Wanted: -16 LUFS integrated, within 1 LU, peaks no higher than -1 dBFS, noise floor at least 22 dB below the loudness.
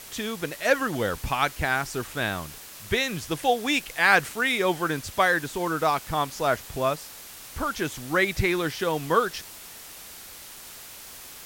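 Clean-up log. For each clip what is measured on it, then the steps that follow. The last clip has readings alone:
noise floor -44 dBFS; noise floor target -48 dBFS; loudness -25.5 LUFS; peak level -6.0 dBFS; loudness target -16.0 LUFS
-> noise print and reduce 6 dB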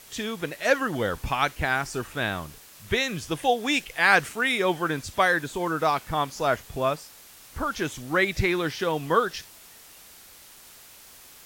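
noise floor -50 dBFS; loudness -25.5 LUFS; peak level -6.0 dBFS; loudness target -16.0 LUFS
-> trim +9.5 dB; peak limiter -1 dBFS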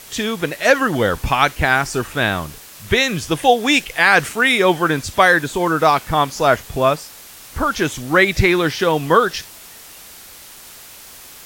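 loudness -16.5 LUFS; peak level -1.0 dBFS; noise floor -40 dBFS

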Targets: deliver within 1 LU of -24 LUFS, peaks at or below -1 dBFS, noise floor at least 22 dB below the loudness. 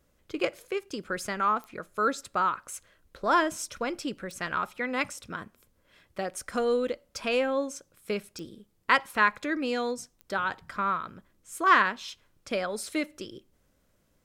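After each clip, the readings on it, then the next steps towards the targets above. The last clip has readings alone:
clicks found 4; loudness -29.0 LUFS; peak level -7.0 dBFS; loudness target -24.0 LUFS
-> de-click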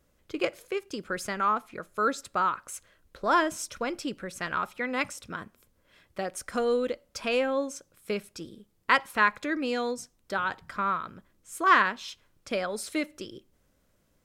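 clicks found 0; loudness -29.0 LUFS; peak level -7.0 dBFS; loudness target -24.0 LUFS
-> trim +5 dB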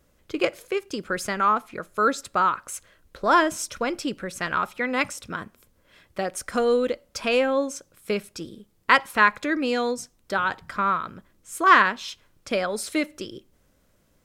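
loudness -24.0 LUFS; peak level -2.0 dBFS; noise floor -64 dBFS

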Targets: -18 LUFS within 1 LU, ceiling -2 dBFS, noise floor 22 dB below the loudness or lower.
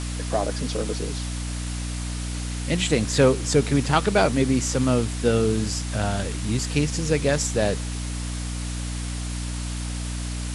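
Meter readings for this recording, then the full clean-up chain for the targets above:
hum 60 Hz; highest harmonic 300 Hz; hum level -27 dBFS; noise floor -30 dBFS; noise floor target -47 dBFS; loudness -24.5 LUFS; peak level -4.0 dBFS; loudness target -18.0 LUFS
-> hum notches 60/120/180/240/300 Hz; noise reduction 17 dB, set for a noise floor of -30 dBFS; trim +6.5 dB; peak limiter -2 dBFS

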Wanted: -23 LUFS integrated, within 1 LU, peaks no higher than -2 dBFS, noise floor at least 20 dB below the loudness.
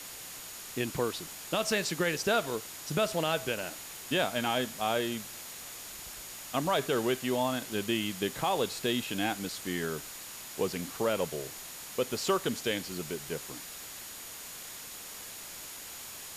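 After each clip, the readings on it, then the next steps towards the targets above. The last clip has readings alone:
steady tone 6.8 kHz; tone level -51 dBFS; noise floor -44 dBFS; noise floor target -53 dBFS; loudness -33.0 LUFS; peak level -17.0 dBFS; loudness target -23.0 LUFS
-> band-stop 6.8 kHz, Q 30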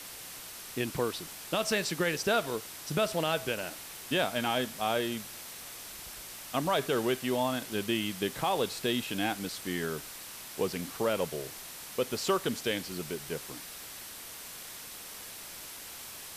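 steady tone not found; noise floor -45 dBFS; noise floor target -53 dBFS
-> noise reduction 8 dB, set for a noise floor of -45 dBFS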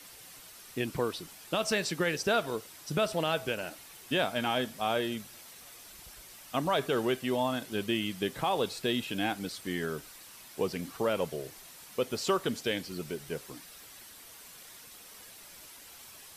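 noise floor -51 dBFS; noise floor target -52 dBFS
-> noise reduction 6 dB, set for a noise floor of -51 dBFS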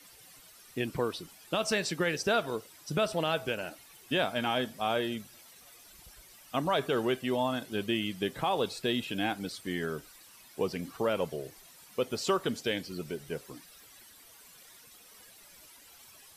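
noise floor -56 dBFS; loudness -32.5 LUFS; peak level -17.5 dBFS; loudness target -23.0 LUFS
-> trim +9.5 dB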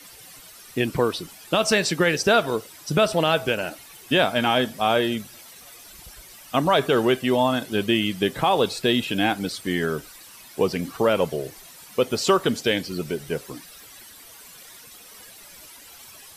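loudness -23.0 LUFS; peak level -8.0 dBFS; noise floor -46 dBFS

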